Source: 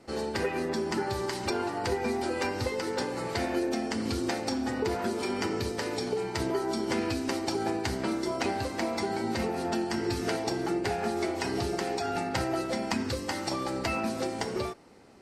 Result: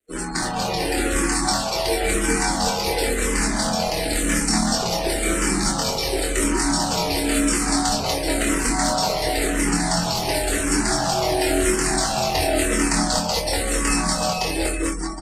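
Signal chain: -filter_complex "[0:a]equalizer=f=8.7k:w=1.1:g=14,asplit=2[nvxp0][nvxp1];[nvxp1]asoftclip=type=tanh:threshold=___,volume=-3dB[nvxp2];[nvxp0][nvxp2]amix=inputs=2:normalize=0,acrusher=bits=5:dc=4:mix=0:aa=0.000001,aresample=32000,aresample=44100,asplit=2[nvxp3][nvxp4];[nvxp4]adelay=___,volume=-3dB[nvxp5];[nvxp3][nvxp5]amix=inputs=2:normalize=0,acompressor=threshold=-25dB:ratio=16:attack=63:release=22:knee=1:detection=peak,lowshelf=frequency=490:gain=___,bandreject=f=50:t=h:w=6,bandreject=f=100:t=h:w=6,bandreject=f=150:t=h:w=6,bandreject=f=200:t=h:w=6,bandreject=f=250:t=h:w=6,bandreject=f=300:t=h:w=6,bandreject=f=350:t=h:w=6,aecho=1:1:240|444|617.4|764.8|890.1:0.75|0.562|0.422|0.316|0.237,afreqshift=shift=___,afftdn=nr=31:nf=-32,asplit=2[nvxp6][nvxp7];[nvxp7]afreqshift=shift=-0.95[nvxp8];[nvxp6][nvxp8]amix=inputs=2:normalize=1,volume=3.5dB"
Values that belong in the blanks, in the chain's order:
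-23dB, 24, -3, -45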